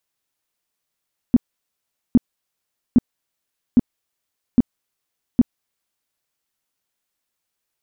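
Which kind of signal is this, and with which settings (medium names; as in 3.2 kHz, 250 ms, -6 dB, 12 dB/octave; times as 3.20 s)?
tone bursts 243 Hz, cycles 6, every 0.81 s, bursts 6, -7 dBFS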